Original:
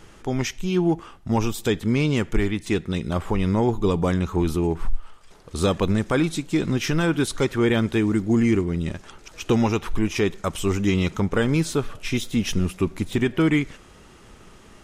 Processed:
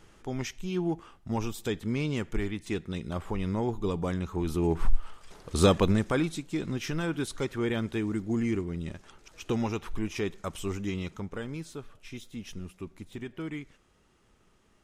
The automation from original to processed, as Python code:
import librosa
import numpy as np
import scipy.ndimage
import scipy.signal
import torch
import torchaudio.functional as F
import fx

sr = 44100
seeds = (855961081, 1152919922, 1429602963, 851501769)

y = fx.gain(x, sr, db=fx.line((4.41, -9.0), (4.86, 0.5), (5.65, 0.5), (6.45, -9.5), (10.58, -9.5), (11.65, -17.5)))